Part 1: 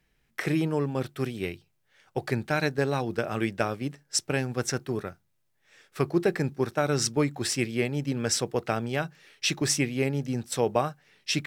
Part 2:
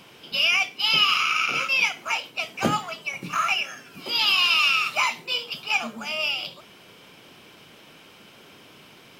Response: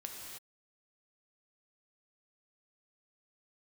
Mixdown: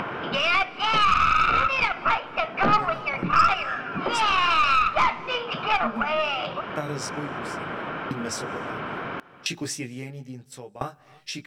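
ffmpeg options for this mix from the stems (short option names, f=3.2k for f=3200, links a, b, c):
-filter_complex "[0:a]flanger=delay=15.5:depth=6.2:speed=0.19,aeval=exprs='val(0)*pow(10,-34*if(lt(mod(0.74*n/s,1),2*abs(0.74)/1000),1-mod(0.74*n/s,1)/(2*abs(0.74)/1000),(mod(0.74*n/s,1)-2*abs(0.74)/1000)/(1-2*abs(0.74)/1000))/20)':c=same,volume=-7.5dB,asplit=2[a][b];[b]volume=-22dB[c];[1:a]lowpass=f=1.4k:t=q:w=2.4,equalizer=f=660:w=4:g=3,aeval=exprs='0.473*(cos(1*acos(clip(val(0)/0.473,-1,1)))-cos(1*PI/2))+0.0531*(cos(6*acos(clip(val(0)/0.473,-1,1)))-cos(6*PI/2))':c=same,volume=3dB,asplit=2[d][e];[e]volume=-16dB[f];[2:a]atrim=start_sample=2205[g];[c][f]amix=inputs=2:normalize=0[h];[h][g]afir=irnorm=-1:irlink=0[i];[a][d][i]amix=inputs=3:normalize=0,acompressor=mode=upward:threshold=-19dB:ratio=2.5,alimiter=limit=-9.5dB:level=0:latency=1:release=79"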